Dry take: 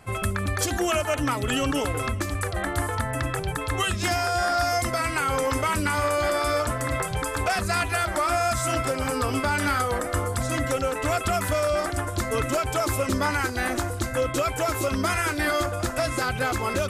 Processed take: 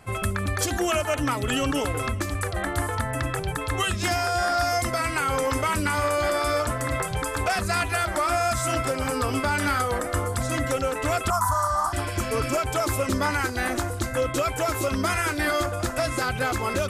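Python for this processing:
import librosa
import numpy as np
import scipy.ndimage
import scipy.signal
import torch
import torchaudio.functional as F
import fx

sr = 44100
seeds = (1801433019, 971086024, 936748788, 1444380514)

y = fx.spec_repair(x, sr, seeds[0], start_s=11.55, length_s=1.0, low_hz=1400.0, high_hz=5500.0, source='both')
y = fx.curve_eq(y, sr, hz=(120.0, 470.0, 1000.0, 2500.0, 5800.0), db=(0, -21, 15, -22, 2), at=(11.3, 11.93))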